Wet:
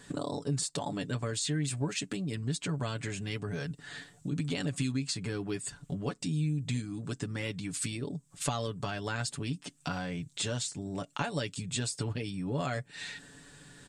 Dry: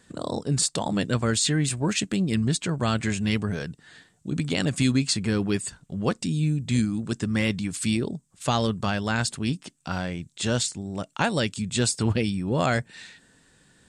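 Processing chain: compressor 5:1, threshold -38 dBFS, peak gain reduction 18 dB; comb 7 ms, depth 63%; gain +4 dB

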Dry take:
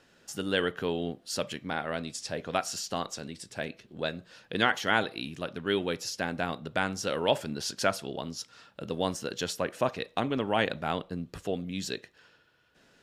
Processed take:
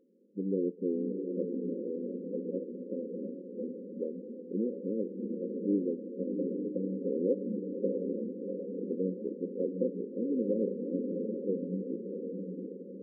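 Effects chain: formant shift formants -2 st; FFT band-pass 180–550 Hz; diffused feedback echo 0.704 s, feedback 54%, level -4 dB

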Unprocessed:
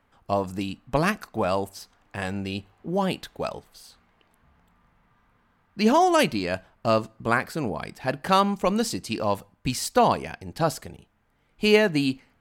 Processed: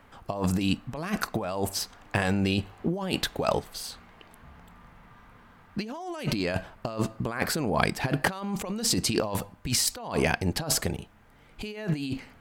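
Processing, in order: negative-ratio compressor -33 dBFS, ratio -1; gain +3.5 dB

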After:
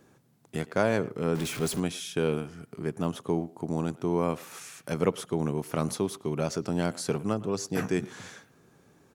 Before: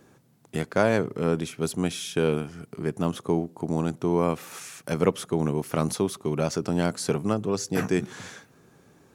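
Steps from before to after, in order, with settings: 1.35–1.8 zero-crossing step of -28.5 dBFS; speakerphone echo 0.11 s, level -19 dB; gain -3.5 dB

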